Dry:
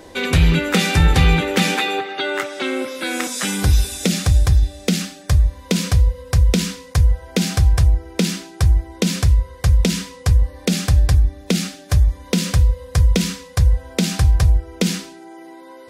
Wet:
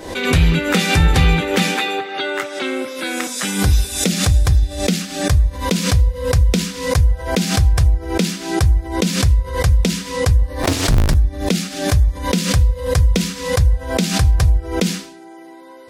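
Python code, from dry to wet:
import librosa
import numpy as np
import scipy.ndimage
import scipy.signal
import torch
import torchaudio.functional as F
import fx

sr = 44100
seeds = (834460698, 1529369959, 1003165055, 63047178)

y = fx.cycle_switch(x, sr, every=2, mode='inverted', at=(10.62, 11.13), fade=0.02)
y = fx.pre_swell(y, sr, db_per_s=84.0)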